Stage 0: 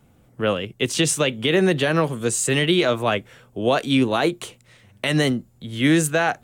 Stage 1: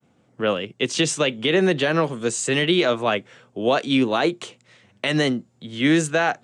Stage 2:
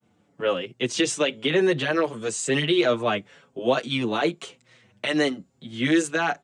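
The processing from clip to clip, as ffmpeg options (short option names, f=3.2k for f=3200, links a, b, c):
-af "highpass=160,agate=range=-33dB:threshold=-56dB:ratio=3:detection=peak,lowpass=f=7.6k:w=0.5412,lowpass=f=7.6k:w=1.3066"
-filter_complex "[0:a]asplit=2[a][b];[b]adelay=6.2,afreqshift=-1[c];[a][c]amix=inputs=2:normalize=1"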